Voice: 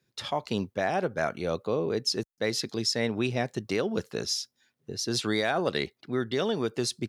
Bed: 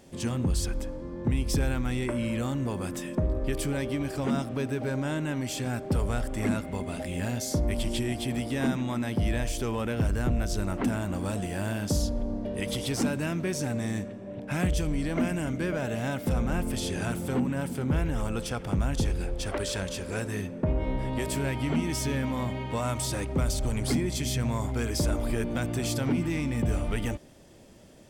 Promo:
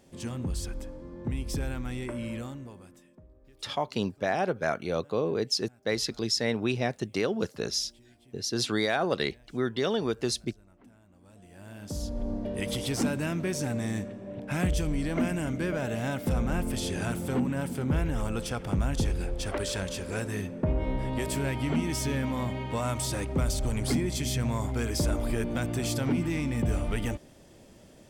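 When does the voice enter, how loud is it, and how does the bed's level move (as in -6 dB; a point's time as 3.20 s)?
3.45 s, 0.0 dB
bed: 2.35 s -5.5 dB
3.27 s -29 dB
11.12 s -29 dB
12.28 s -0.5 dB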